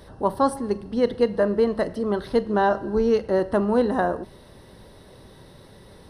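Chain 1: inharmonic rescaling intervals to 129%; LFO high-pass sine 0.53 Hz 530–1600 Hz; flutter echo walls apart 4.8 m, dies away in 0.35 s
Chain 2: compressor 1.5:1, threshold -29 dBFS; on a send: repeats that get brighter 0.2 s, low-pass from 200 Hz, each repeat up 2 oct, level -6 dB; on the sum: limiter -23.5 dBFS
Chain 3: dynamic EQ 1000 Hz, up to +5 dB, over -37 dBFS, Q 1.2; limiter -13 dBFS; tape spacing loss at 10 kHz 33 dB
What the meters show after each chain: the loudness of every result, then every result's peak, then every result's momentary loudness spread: -20.0, -32.5, -26.0 LUFS; -4.0, -23.5, -14.0 dBFS; 16, 11, 5 LU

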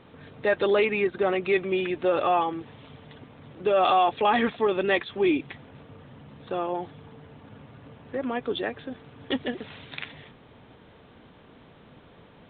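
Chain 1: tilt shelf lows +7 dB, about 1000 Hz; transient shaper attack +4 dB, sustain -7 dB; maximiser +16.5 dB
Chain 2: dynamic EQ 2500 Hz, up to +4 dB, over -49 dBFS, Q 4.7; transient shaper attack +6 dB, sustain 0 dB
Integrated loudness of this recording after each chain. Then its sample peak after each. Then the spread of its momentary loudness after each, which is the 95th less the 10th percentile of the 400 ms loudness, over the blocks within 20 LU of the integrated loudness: -11.5, -23.5 LUFS; -1.0, -8.0 dBFS; 18, 14 LU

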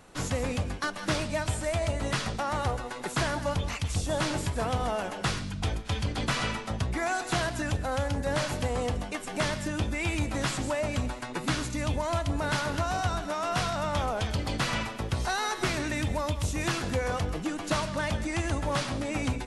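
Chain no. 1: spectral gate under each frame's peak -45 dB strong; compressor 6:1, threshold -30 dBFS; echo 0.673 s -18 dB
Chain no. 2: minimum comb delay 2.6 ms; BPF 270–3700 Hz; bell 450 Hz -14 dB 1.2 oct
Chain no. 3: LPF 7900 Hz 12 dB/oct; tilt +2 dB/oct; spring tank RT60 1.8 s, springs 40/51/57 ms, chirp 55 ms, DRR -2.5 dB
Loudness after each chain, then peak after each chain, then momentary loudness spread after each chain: -34.5, -37.0, -27.0 LUFS; -18.0, -20.0, -13.0 dBFS; 2, 6, 4 LU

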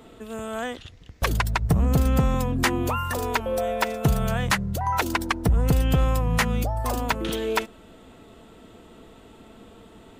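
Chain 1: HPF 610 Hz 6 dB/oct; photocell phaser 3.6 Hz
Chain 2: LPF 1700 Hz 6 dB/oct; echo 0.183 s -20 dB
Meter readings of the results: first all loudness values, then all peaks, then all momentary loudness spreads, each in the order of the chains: -32.5, -25.5 LUFS; -11.5, -12.5 dBFS; 7, 11 LU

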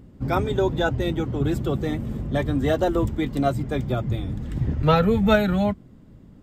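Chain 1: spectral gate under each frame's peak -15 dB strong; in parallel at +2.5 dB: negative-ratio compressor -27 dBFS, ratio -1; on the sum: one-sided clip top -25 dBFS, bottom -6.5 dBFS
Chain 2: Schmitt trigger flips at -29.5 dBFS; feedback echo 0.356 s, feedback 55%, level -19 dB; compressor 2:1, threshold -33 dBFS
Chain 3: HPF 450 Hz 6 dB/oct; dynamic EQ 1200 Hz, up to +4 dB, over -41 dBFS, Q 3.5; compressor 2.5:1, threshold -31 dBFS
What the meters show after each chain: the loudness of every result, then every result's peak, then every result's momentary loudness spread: -22.5, -30.0, -33.5 LUFS; -7.5, -23.0, -17.5 dBFS; 3, 3, 8 LU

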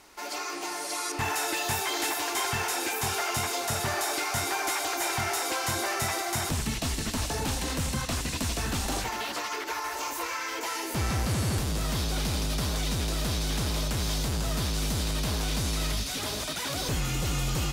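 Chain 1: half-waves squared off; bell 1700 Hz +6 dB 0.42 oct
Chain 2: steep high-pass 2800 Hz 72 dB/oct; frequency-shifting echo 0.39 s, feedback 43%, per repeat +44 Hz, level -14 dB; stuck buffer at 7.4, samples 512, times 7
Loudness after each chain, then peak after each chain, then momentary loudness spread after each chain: -24.5, -33.0 LUFS; -16.0, -19.5 dBFS; 4, 5 LU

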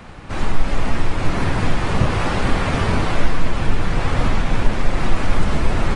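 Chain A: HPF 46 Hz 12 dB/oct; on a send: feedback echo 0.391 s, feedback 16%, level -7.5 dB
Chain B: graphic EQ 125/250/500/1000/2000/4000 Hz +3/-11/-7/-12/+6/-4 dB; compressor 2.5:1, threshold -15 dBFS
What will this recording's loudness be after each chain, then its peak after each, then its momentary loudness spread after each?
-22.0, -26.5 LUFS; -2.5, -7.5 dBFS; 5, 7 LU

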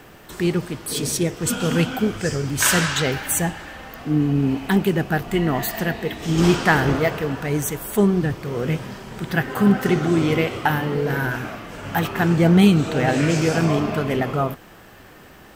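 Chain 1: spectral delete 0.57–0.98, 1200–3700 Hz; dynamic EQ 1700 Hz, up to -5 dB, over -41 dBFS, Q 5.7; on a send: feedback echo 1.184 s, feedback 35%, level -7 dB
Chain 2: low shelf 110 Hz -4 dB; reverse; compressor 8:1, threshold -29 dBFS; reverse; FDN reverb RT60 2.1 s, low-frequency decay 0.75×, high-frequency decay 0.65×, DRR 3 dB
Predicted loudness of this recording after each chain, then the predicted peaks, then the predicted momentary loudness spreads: -20.5, -30.5 LUFS; -3.5, -16.0 dBFS; 8, 5 LU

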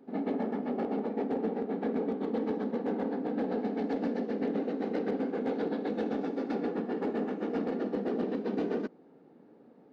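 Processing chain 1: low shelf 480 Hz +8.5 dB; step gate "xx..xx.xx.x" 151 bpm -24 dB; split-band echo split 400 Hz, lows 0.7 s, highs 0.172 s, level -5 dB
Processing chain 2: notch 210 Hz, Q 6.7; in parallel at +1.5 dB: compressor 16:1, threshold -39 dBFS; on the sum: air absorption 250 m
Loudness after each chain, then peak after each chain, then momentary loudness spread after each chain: -28.0, -31.5 LUFS; -13.5, -18.5 dBFS; 3, 1 LU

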